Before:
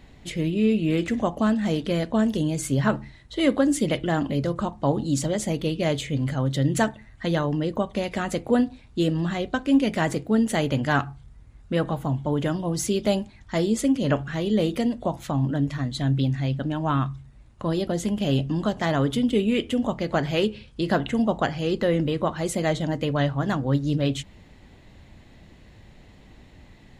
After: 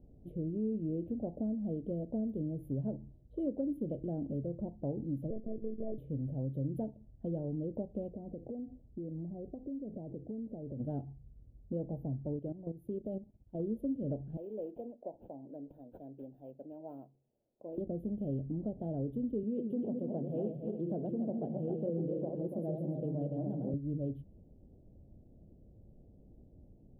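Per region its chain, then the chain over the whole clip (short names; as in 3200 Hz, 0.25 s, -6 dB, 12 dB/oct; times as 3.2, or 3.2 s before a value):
5.3–5.98 LPF 1100 Hz + monotone LPC vocoder at 8 kHz 220 Hz
8.11–10.8 compressor 8:1, threshold -29 dBFS + polynomial smoothing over 65 samples
12.36–13.6 low shelf 150 Hz -4 dB + level quantiser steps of 13 dB
14.37–17.78 HPF 470 Hz + tilt +2 dB/oct + decimation joined by straight lines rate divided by 8×
19.43–23.74 regenerating reverse delay 0.143 s, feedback 60%, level -3.5 dB + HPF 120 Hz 24 dB/oct
whole clip: inverse Chebyshev band-stop 1100–8300 Hz, stop band 40 dB; resonant high shelf 4700 Hz -12 dB, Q 1.5; compressor 2:1, threshold -28 dBFS; gain -8 dB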